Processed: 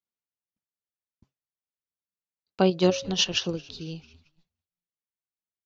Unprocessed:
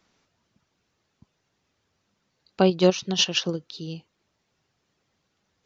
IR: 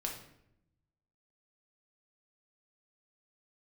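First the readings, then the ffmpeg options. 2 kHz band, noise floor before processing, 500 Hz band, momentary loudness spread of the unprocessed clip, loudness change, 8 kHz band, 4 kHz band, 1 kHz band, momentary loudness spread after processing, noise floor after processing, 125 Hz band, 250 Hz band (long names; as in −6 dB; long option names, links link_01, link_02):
−2.0 dB, −75 dBFS, −2.5 dB, 17 LU, −2.0 dB, can't be measured, −2.0 dB, −2.0 dB, 17 LU, below −85 dBFS, −2.0 dB, −2.0 dB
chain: -filter_complex "[0:a]bandreject=frequency=136.4:width_type=h:width=4,bandreject=frequency=272.8:width_type=h:width=4,bandreject=frequency=409.2:width_type=h:width=4,bandreject=frequency=545.6:width_type=h:width=4,bandreject=frequency=682:width_type=h:width=4,asplit=5[link_01][link_02][link_03][link_04][link_05];[link_02]adelay=222,afreqshift=-84,volume=-23.5dB[link_06];[link_03]adelay=444,afreqshift=-168,volume=-27.8dB[link_07];[link_04]adelay=666,afreqshift=-252,volume=-32.1dB[link_08];[link_05]adelay=888,afreqshift=-336,volume=-36.4dB[link_09];[link_01][link_06][link_07][link_08][link_09]amix=inputs=5:normalize=0,agate=range=-33dB:threshold=-50dB:ratio=3:detection=peak,volume=-2dB"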